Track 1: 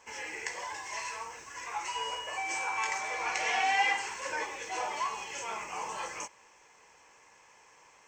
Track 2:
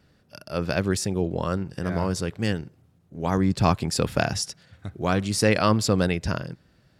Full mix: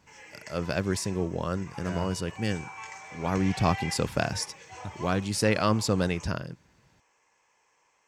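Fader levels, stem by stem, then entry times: -9.5 dB, -4.0 dB; 0.00 s, 0.00 s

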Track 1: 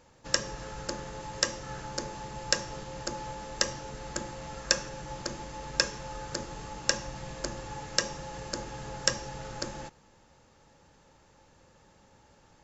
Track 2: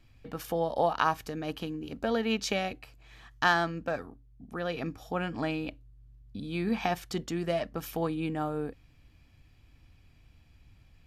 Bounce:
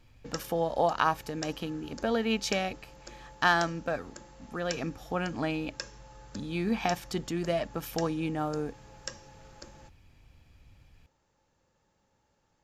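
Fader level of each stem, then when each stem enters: -13.0 dB, +0.5 dB; 0.00 s, 0.00 s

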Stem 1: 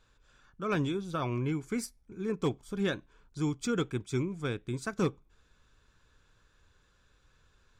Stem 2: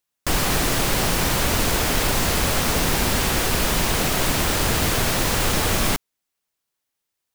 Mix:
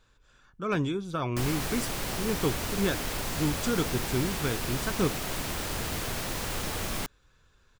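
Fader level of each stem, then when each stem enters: +2.0 dB, -12.0 dB; 0.00 s, 1.10 s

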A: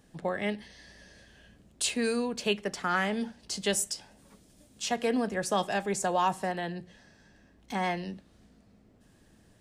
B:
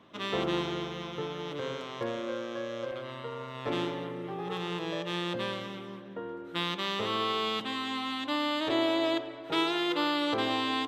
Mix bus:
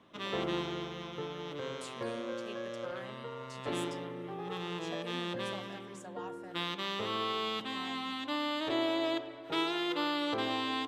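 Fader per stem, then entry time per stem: -20.0 dB, -4.0 dB; 0.00 s, 0.00 s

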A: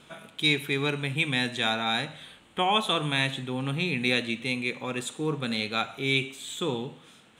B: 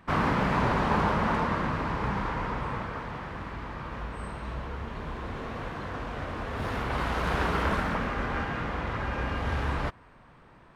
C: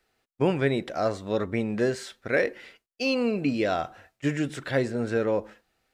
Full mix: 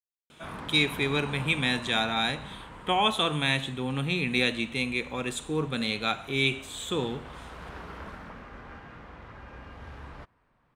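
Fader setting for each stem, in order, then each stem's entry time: 0.0 dB, -14.5 dB, mute; 0.30 s, 0.35 s, mute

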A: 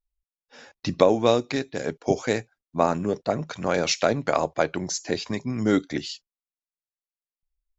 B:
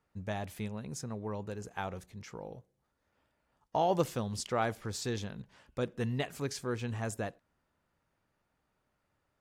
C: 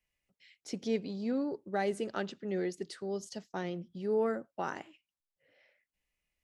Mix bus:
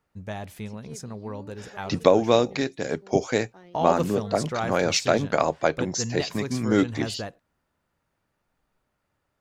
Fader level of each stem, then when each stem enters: +0.5 dB, +2.5 dB, -13.0 dB; 1.05 s, 0.00 s, 0.00 s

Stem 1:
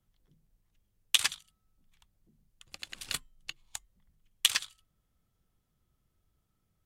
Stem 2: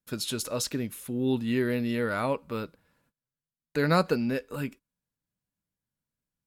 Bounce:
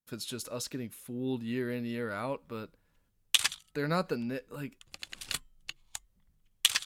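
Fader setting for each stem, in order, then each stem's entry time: 0.0 dB, -7.0 dB; 2.20 s, 0.00 s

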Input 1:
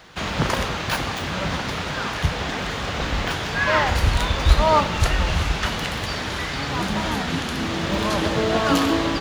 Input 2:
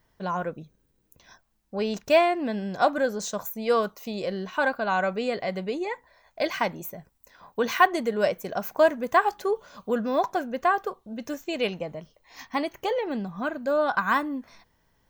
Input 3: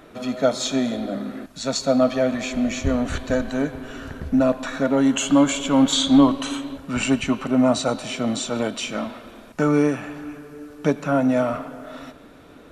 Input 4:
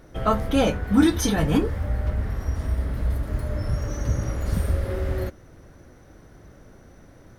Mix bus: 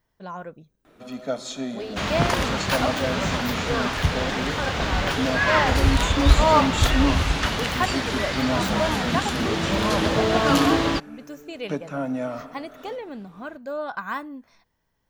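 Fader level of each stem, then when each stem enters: 0.0 dB, -6.5 dB, -8.5 dB, mute; 1.80 s, 0.00 s, 0.85 s, mute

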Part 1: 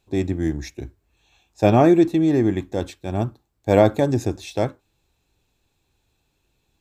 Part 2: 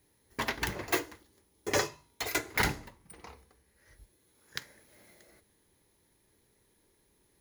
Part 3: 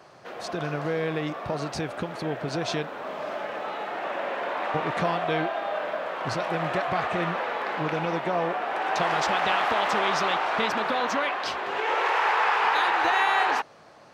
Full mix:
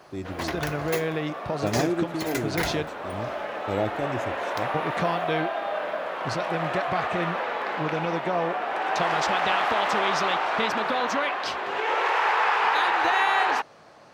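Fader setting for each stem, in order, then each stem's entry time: -12.0 dB, -1.5 dB, +0.5 dB; 0.00 s, 0.00 s, 0.00 s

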